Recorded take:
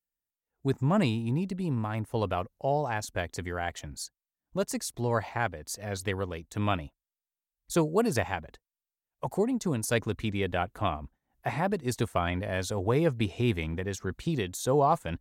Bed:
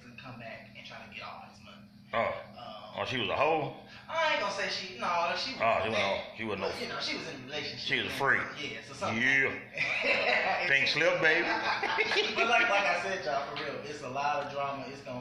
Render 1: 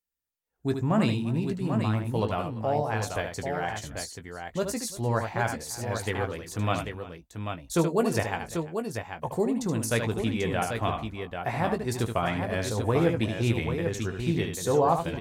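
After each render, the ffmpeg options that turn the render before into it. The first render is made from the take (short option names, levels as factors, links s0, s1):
-filter_complex "[0:a]asplit=2[s0][s1];[s1]adelay=18,volume=0.355[s2];[s0][s2]amix=inputs=2:normalize=0,aecho=1:1:75|344|790:0.447|0.112|0.473"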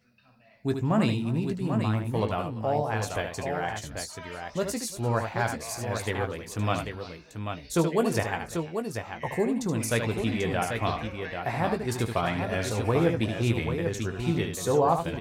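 -filter_complex "[1:a]volume=0.168[s0];[0:a][s0]amix=inputs=2:normalize=0"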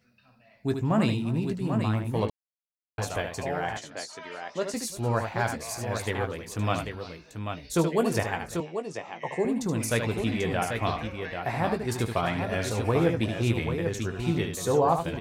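-filter_complex "[0:a]asettb=1/sr,asplit=3[s0][s1][s2];[s0]atrim=end=3.774[s3];[s1]atrim=start=3.77:end=4.74,asetpts=PTS-STARTPTS,afade=t=in:d=0.004:c=qsin,afade=t=out:st=0.966:d=0.004:c=qsin,highpass=270,lowpass=6900[s4];[s2]atrim=start=4.736[s5];[s3][s4]acrossfade=d=0.004:c1=hsin:c2=qsin[s6];[s6][s5]acrossfade=d=0.004:c1=qsin:c2=hsin,asettb=1/sr,asplit=3[s7][s8][s9];[s7]atrim=end=8.604[s10];[s8]atrim=start=8.6:end=9.45,asetpts=PTS-STARTPTS,afade=t=in:d=0.004:c=qsin,afade=t=out:st=0.846:d=0.004:c=qsin,highpass=f=160:w=0.5412,highpass=f=160:w=1.3066,equalizer=f=230:t=q:w=4:g=-8,equalizer=f=1500:t=q:w=4:g=-8,equalizer=f=4400:t=q:w=4:g=-5,lowpass=f=7600:w=0.5412,lowpass=f=7600:w=1.3066[s11];[s9]atrim=start=9.446[s12];[s10][s11]acrossfade=d=0.004:c1=hsin:c2=qsin[s13];[s13][s12]acrossfade=d=0.004:c1=qsin:c2=hsin,asplit=3[s14][s15][s16];[s14]atrim=end=2.3,asetpts=PTS-STARTPTS,afade=t=out:st=2.296:d=0.004:c=hsin[s17];[s15]atrim=start=2.3:end=2.98,asetpts=PTS-STARTPTS,volume=0[s18];[s16]atrim=start=2.98,asetpts=PTS-STARTPTS,afade=t=in:d=0.004:c=hsin[s19];[s17][s18][s19]concat=n=3:v=0:a=1"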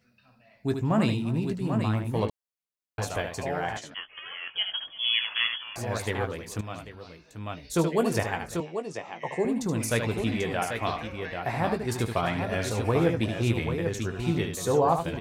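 -filter_complex "[0:a]asettb=1/sr,asplit=3[s0][s1][s2];[s0]atrim=end=3.944[s3];[s1]atrim=start=3.94:end=5.76,asetpts=PTS-STARTPTS,afade=t=in:d=0.004:c=qsin,afade=t=out:st=1.816:d=0.004:c=qsin,lowpass=f=3000:t=q:w=0.5098,lowpass=f=3000:t=q:w=0.6013,lowpass=f=3000:t=q:w=0.9,lowpass=f=3000:t=q:w=2.563,afreqshift=-3500[s4];[s2]atrim=start=5.756[s5];[s3][s4]acrossfade=d=0.004:c1=hsin:c2=qsin[s6];[s6][s5]acrossfade=d=0.004:c1=qsin:c2=hsin,asettb=1/sr,asplit=3[s7][s8][s9];[s7]atrim=end=10.434[s10];[s8]atrim=start=10.43:end=11.1,asetpts=PTS-STARTPTS,afade=t=in:d=0.004:c=qsin,afade=t=out:st=0.666:d=0.004:c=qsin,lowshelf=f=230:g=-6[s11];[s9]atrim=start=11.096[s12];[s10][s11]acrossfade=d=0.004:c1=hsin:c2=qsin[s13];[s13][s12]acrossfade=d=0.004:c1=qsin:c2=hsin,asplit=2[s14][s15];[s14]atrim=end=6.61,asetpts=PTS-STARTPTS,afade=t=out:st=6.606:d=0.004:c=hsin:silence=0.223872[s16];[s15]atrim=start=6.61,asetpts=PTS-STARTPTS,afade=t=in:d=1.26:silence=0.223872[s17];[s16][s17]concat=n=2:v=0:a=1"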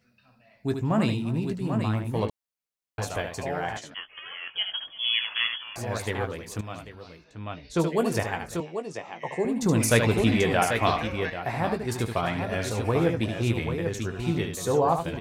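-filter_complex "[0:a]asettb=1/sr,asplit=3[s0][s1][s2];[s0]atrim=end=7.244[s3];[s1]atrim=start=7.24:end=7.8,asetpts=PTS-STARTPTS,afade=t=in:d=0.004:c=qsin,afade=t=out:st=0.556:d=0.004:c=qsin,lowpass=4900[s4];[s2]atrim=start=7.796[s5];[s3][s4]acrossfade=d=0.004:c1=hsin:c2=qsin[s6];[s6][s5]acrossfade=d=0.004:c1=qsin:c2=hsin,asettb=1/sr,asplit=3[s7][s8][s9];[s7]atrim=end=9.624[s10];[s8]atrim=start=9.62:end=11.3,asetpts=PTS-STARTPTS,afade=t=in:d=0.004:c=qsin,afade=t=out:st=1.676:d=0.004:c=qsin,acontrast=56[s11];[s9]atrim=start=11.296[s12];[s10][s11]acrossfade=d=0.004:c1=hsin:c2=qsin[s13];[s13][s12]acrossfade=d=0.004:c1=qsin:c2=hsin"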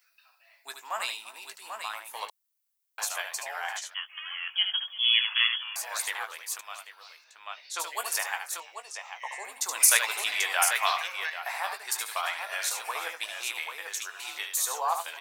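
-af "highpass=f=870:w=0.5412,highpass=f=870:w=1.3066,aemphasis=mode=production:type=50kf"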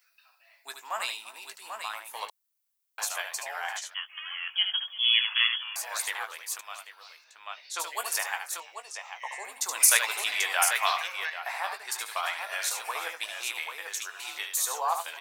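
-filter_complex "[0:a]asettb=1/sr,asplit=3[s0][s1][s2];[s0]atrim=end=11.254[s3];[s1]atrim=start=11.25:end=12.22,asetpts=PTS-STARTPTS,afade=t=in:d=0.004:c=qsin,afade=t=out:st=0.966:d=0.004:c=qsin,highshelf=f=7100:g=-5.5[s4];[s2]atrim=start=12.216[s5];[s3][s4]acrossfade=d=0.004:c1=hsin:c2=qsin[s6];[s6][s5]acrossfade=d=0.004:c1=qsin:c2=hsin"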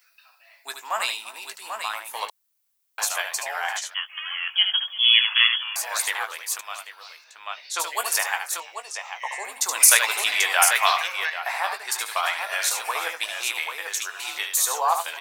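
-af "volume=2.11,alimiter=limit=0.794:level=0:latency=1"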